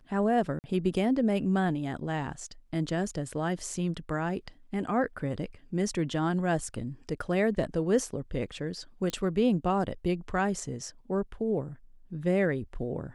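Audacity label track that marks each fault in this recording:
0.590000	0.640000	dropout 49 ms
9.100000	9.100000	pop -19 dBFS

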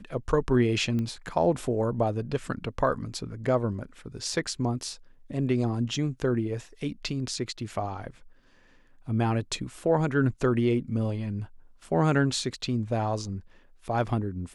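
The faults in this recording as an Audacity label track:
0.990000	0.990000	pop -21 dBFS

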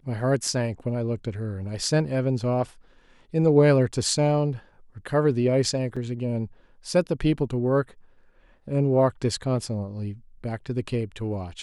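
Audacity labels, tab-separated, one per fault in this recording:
5.960000	5.970000	dropout 5.3 ms

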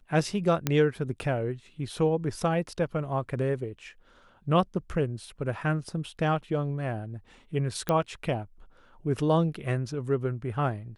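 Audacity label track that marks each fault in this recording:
0.670000	0.670000	pop -10 dBFS
7.890000	7.890000	pop -13 dBFS

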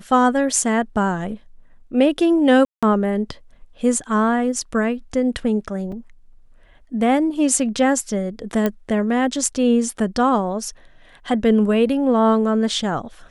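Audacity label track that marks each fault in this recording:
2.650000	2.830000	dropout 176 ms
5.920000	5.920000	dropout 3.7 ms
8.660000	8.660000	pop -8 dBFS

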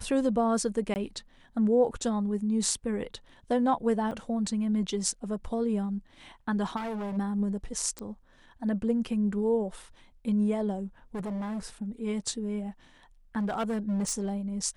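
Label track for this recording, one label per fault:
0.940000	0.960000	dropout 19 ms
4.110000	4.120000	dropout 5 ms
6.760000	7.180000	clipped -31.5 dBFS
7.990000	7.990000	pop -23 dBFS
11.150000	11.660000	clipped -31 dBFS
13.380000	14.370000	clipped -25.5 dBFS

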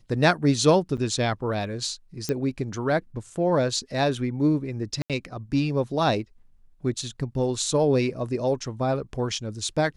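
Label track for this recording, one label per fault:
0.970000	0.980000	dropout 8.1 ms
2.290000	2.290000	pop -13 dBFS
5.020000	5.100000	dropout 77 ms

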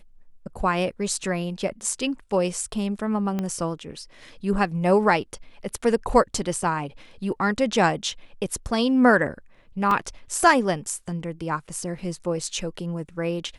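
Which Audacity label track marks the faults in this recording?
3.390000	3.390000	pop -15 dBFS
9.910000	9.910000	dropout 2.8 ms

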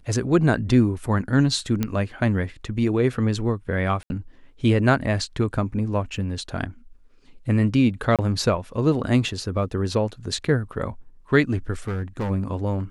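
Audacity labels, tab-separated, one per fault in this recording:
1.830000	1.830000	pop -10 dBFS
4.030000	4.100000	dropout 71 ms
6.170000	6.170000	dropout 3 ms
8.160000	8.190000	dropout 27 ms
11.870000	12.310000	clipped -23 dBFS

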